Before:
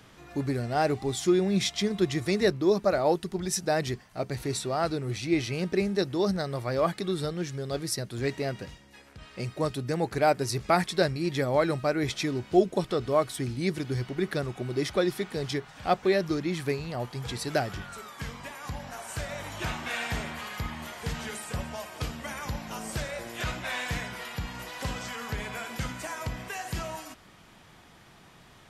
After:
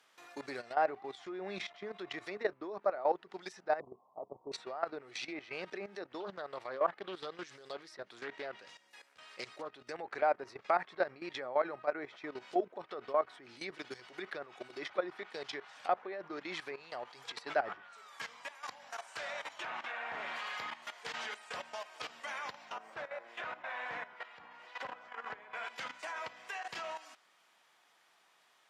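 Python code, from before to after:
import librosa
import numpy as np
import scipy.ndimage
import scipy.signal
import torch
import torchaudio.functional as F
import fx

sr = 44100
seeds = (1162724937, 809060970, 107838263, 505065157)

y = fx.steep_lowpass(x, sr, hz=1100.0, slope=96, at=(3.8, 4.52))
y = fx.doppler_dist(y, sr, depth_ms=0.31, at=(6.2, 9.77))
y = fx.sustainer(y, sr, db_per_s=53.0, at=(17.24, 17.73))
y = fx.resample_bad(y, sr, factor=2, down='filtered', up='zero_stuff', at=(22.62, 25.47))
y = scipy.signal.sosfilt(scipy.signal.butter(2, 680.0, 'highpass', fs=sr, output='sos'), y)
y = fx.env_lowpass_down(y, sr, base_hz=1500.0, full_db=-30.5)
y = fx.level_steps(y, sr, step_db=14)
y = F.gain(torch.from_numpy(y), 1.0).numpy()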